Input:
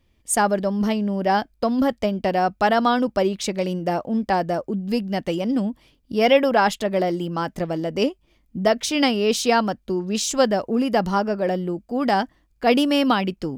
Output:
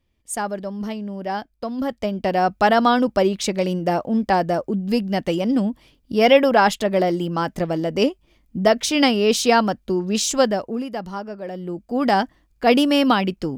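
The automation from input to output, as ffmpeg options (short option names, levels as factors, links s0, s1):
-af "volume=4.73,afade=t=in:st=1.73:d=0.82:silence=0.354813,afade=t=out:st=10.27:d=0.64:silence=0.266073,afade=t=in:st=11.52:d=0.44:silence=0.281838"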